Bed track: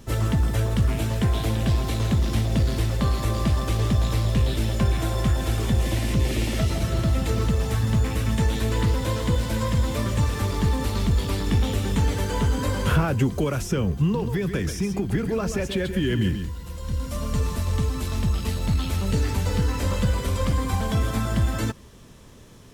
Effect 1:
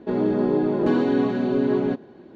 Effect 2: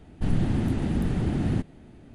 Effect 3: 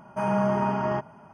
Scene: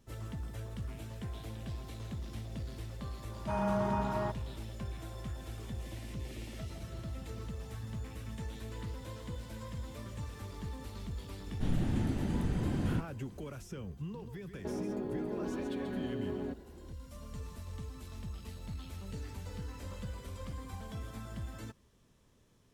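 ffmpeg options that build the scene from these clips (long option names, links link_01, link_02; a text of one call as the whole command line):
ffmpeg -i bed.wav -i cue0.wav -i cue1.wav -i cue2.wav -filter_complex "[0:a]volume=-19.5dB[link_01];[1:a]acompressor=threshold=-25dB:ratio=6:attack=3.2:release=140:knee=1:detection=peak[link_02];[3:a]atrim=end=1.33,asetpts=PTS-STARTPTS,volume=-8dB,afade=type=in:duration=0.004:curve=hsin,afade=type=out:start_time=1.326:duration=0.004:curve=hsin,adelay=3310[link_03];[2:a]atrim=end=2.14,asetpts=PTS-STARTPTS,volume=-7.5dB,afade=type=in:duration=0.004:curve=hsin,afade=type=out:start_time=2.136:duration=0.004:curve=hsin,adelay=11390[link_04];[link_02]atrim=end=2.35,asetpts=PTS-STARTPTS,volume=-9dB,afade=type=in:duration=0.004:curve=hsin,afade=type=out:start_time=2.346:duration=0.004:curve=hsin,adelay=14580[link_05];[link_01][link_03][link_04][link_05]amix=inputs=4:normalize=0" out.wav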